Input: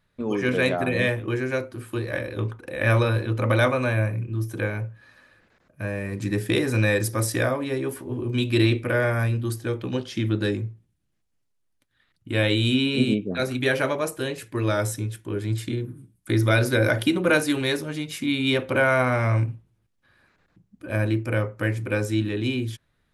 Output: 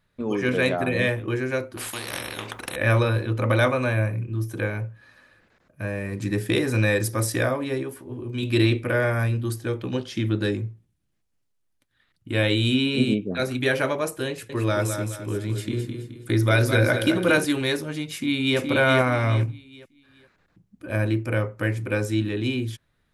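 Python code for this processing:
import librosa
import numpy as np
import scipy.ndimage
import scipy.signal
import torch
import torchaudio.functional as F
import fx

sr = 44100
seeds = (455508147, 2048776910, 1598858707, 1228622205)

y = fx.spectral_comp(x, sr, ratio=4.0, at=(1.77, 2.76))
y = fx.echo_feedback(y, sr, ms=213, feedback_pct=38, wet_db=-7.5, at=(14.28, 17.45))
y = fx.echo_throw(y, sr, start_s=18.14, length_s=0.45, ms=420, feedback_pct=30, wet_db=-3.0)
y = fx.edit(y, sr, fx.clip_gain(start_s=7.83, length_s=0.6, db=-5.0), tone=tone)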